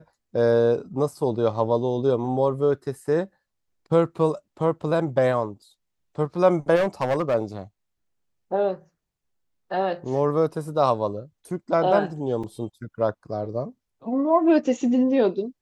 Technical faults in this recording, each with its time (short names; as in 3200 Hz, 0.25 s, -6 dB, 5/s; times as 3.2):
6.75–7.35 clipped -18 dBFS
12.43–12.44 gap 5.6 ms